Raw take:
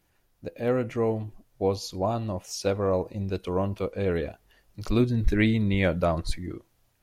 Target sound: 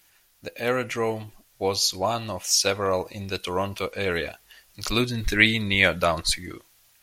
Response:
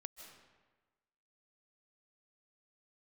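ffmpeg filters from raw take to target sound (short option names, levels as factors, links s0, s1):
-af "tiltshelf=f=970:g=-10,volume=1.88"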